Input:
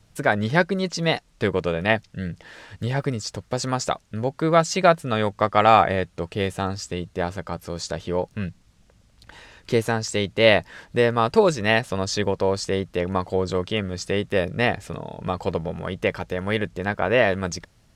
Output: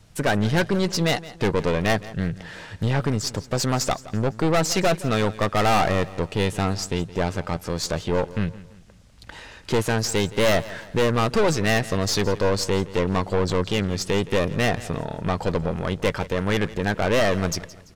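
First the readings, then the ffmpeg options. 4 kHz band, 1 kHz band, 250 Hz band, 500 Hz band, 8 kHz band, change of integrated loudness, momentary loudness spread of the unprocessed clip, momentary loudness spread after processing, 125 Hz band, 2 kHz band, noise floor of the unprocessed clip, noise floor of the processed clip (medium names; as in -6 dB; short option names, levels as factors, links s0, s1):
+1.0 dB, -3.0 dB, +2.0 dB, -1.0 dB, +4.5 dB, -0.5 dB, 12 LU, 8 LU, +3.0 dB, -2.0 dB, -59 dBFS, -47 dBFS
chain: -af "aeval=exprs='(tanh(14.1*val(0)+0.5)-tanh(0.5))/14.1':c=same,aecho=1:1:169|338|507:0.126|0.0516|0.0212,volume=2.11"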